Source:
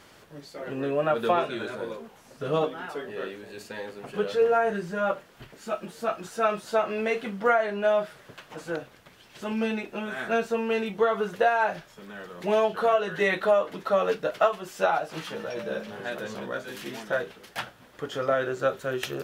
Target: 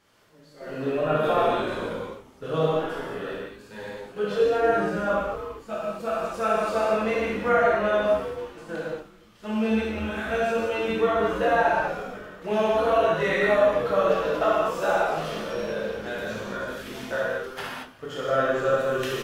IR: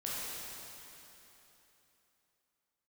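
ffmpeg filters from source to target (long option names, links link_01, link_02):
-filter_complex "[0:a]asplit=5[link_01][link_02][link_03][link_04][link_05];[link_02]adelay=264,afreqshift=-140,volume=-11dB[link_06];[link_03]adelay=528,afreqshift=-280,volume=-18.7dB[link_07];[link_04]adelay=792,afreqshift=-420,volume=-26.5dB[link_08];[link_05]adelay=1056,afreqshift=-560,volume=-34.2dB[link_09];[link_01][link_06][link_07][link_08][link_09]amix=inputs=5:normalize=0,agate=range=-9dB:threshold=-37dB:ratio=16:detection=peak[link_10];[1:a]atrim=start_sample=2205,afade=type=out:start_time=0.29:duration=0.01,atrim=end_sample=13230[link_11];[link_10][link_11]afir=irnorm=-1:irlink=0"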